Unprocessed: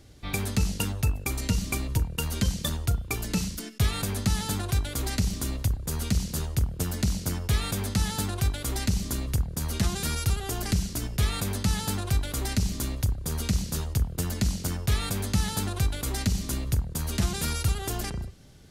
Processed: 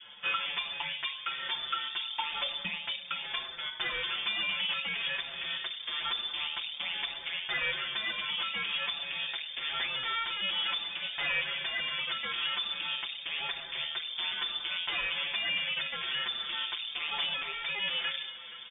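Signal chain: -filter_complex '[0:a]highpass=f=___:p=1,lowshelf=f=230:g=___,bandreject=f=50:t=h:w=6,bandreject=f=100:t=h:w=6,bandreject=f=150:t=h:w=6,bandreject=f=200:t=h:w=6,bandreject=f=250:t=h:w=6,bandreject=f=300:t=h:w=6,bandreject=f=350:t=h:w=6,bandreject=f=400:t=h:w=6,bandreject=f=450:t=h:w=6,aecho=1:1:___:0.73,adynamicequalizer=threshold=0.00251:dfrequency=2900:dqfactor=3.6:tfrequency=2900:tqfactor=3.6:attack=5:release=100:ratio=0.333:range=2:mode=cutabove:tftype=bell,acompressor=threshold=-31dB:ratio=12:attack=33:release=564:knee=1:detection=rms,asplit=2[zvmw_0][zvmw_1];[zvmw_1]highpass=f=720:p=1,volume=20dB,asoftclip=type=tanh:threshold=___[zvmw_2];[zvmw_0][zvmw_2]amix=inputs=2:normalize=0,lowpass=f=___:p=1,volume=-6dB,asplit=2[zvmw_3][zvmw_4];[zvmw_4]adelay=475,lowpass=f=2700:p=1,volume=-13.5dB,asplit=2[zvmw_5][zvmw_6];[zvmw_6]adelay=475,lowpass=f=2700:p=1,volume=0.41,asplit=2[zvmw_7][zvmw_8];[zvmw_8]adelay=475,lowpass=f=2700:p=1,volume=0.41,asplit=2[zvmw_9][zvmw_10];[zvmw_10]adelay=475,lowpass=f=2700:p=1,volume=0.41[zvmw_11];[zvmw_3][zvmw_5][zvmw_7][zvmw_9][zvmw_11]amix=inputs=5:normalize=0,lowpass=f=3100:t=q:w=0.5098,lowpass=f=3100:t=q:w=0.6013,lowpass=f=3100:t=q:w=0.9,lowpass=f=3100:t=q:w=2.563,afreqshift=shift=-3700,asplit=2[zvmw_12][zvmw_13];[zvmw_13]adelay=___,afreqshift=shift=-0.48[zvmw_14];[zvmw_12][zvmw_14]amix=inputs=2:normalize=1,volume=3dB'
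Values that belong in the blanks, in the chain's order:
71, -8, 6, -16.5dB, 1600, 6.2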